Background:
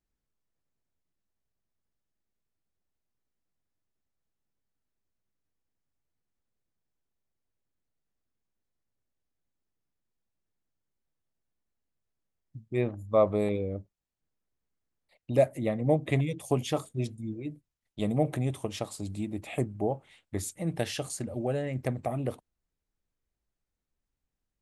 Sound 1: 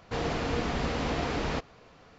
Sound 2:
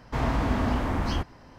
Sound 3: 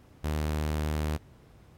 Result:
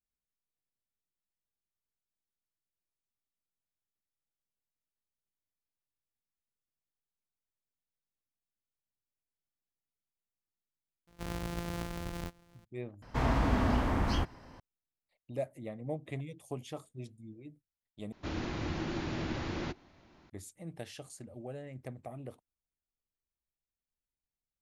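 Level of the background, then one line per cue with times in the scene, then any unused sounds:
background −13 dB
0:11.07: mix in 2 −13 dB + samples sorted by size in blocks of 256 samples
0:13.02: overwrite with 2 −3 dB
0:18.12: overwrite with 1 −6 dB + frequency shifter −390 Hz
not used: 3

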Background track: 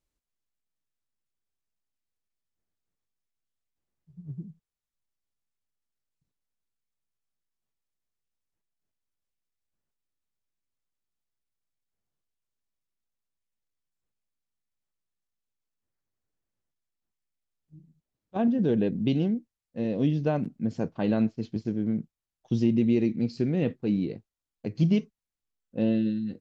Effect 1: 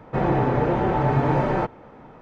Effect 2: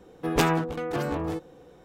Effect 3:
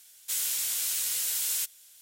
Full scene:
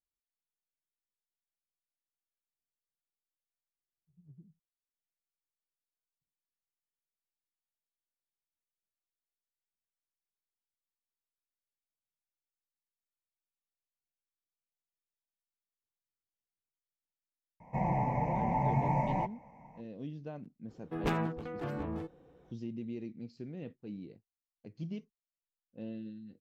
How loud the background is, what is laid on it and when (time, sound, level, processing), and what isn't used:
background track −17.5 dB
0:17.60: mix in 1 −11.5 dB + drawn EQ curve 120 Hz 0 dB, 180 Hz +7 dB, 390 Hz −13 dB, 640 Hz +3 dB, 990 Hz +6 dB, 1,400 Hz −30 dB, 2,100 Hz +9 dB, 3,500 Hz −20 dB, 5,800 Hz +3 dB, 9,000 Hz +1 dB
0:20.68: mix in 2 −10.5 dB + bass and treble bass +4 dB, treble −11 dB
not used: 3

